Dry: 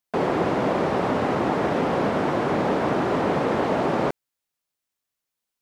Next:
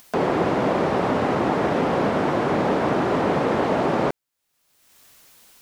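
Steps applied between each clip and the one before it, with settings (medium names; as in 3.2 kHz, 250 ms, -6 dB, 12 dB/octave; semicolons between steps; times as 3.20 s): upward compressor, threshold -29 dBFS; trim +1.5 dB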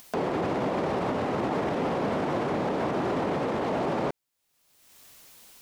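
peaking EQ 1.5 kHz -2.5 dB; peak limiter -20 dBFS, peak gain reduction 10 dB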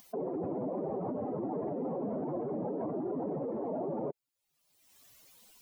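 spectral contrast enhancement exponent 2.4; trim -7 dB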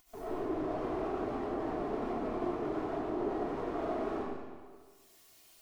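comb filter that takes the minimum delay 2.8 ms; algorithmic reverb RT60 1.6 s, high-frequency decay 0.95×, pre-delay 50 ms, DRR -10 dB; trim -8.5 dB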